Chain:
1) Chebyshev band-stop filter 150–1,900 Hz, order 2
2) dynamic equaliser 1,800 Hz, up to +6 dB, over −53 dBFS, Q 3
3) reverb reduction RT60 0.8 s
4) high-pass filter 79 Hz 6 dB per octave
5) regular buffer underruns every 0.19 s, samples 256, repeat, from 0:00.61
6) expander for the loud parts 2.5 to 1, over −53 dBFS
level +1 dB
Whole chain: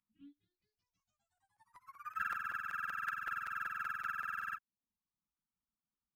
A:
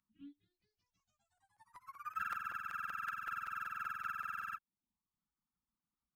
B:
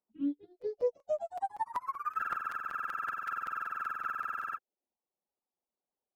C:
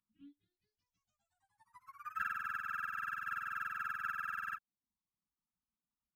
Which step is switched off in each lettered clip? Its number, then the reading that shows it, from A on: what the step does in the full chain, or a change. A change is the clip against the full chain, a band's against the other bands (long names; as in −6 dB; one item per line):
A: 2, change in momentary loudness spread +10 LU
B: 1, change in crest factor −3.5 dB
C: 5, 4 kHz band −1.5 dB